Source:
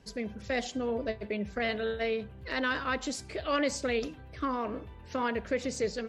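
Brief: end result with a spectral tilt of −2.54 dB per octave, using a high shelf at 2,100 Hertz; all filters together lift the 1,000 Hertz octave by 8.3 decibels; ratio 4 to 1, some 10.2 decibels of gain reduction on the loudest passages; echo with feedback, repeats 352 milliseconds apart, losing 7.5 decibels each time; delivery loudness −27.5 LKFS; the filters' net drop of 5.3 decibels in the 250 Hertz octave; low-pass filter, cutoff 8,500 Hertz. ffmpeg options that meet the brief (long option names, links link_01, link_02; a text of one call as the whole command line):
ffmpeg -i in.wav -af "lowpass=8500,equalizer=frequency=250:width_type=o:gain=-6.5,equalizer=frequency=1000:width_type=o:gain=8.5,highshelf=frequency=2100:gain=7.5,acompressor=threshold=-32dB:ratio=4,aecho=1:1:352|704|1056|1408|1760:0.422|0.177|0.0744|0.0312|0.0131,volume=7.5dB" out.wav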